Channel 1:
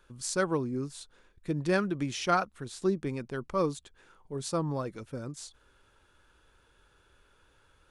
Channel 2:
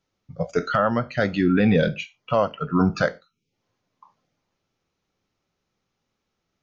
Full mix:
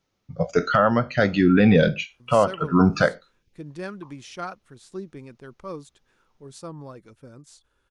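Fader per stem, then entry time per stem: -7.0, +2.5 dB; 2.10, 0.00 s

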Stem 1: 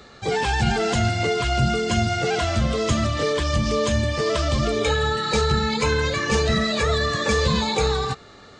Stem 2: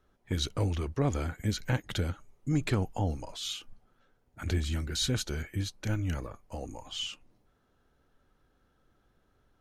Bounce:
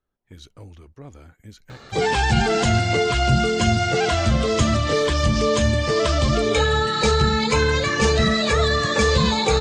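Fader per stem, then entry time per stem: +2.5, -12.5 dB; 1.70, 0.00 s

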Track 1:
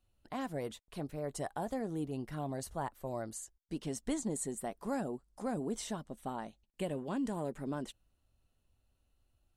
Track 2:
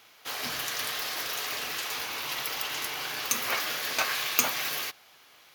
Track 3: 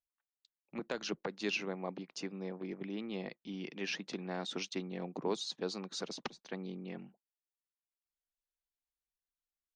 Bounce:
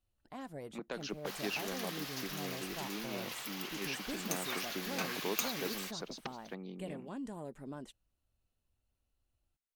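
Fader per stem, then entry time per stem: -7.0, -11.0, -3.0 dB; 0.00, 1.00, 0.00 s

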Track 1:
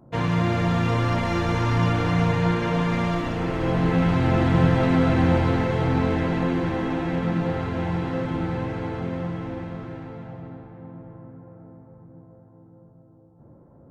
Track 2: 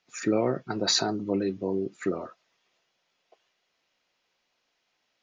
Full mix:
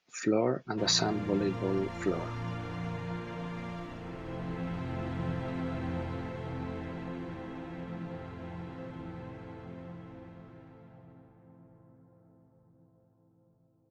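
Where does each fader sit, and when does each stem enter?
-16.0, -2.5 dB; 0.65, 0.00 s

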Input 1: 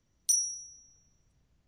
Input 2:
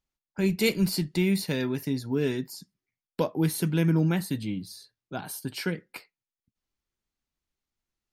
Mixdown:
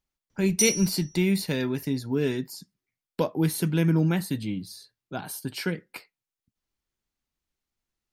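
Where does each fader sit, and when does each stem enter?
+2.0, +1.0 dB; 0.30, 0.00 s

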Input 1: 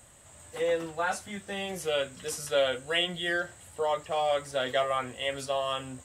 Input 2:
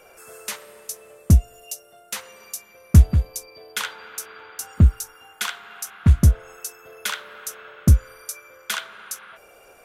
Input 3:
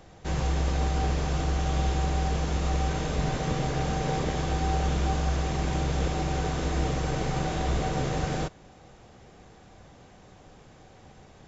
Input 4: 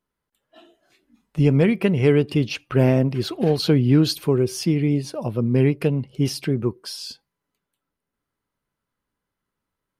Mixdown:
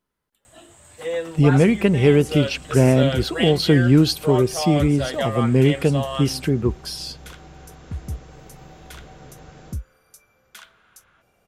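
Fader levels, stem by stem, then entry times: +2.0, -16.5, -15.5, +2.0 dB; 0.45, 1.85, 1.25, 0.00 s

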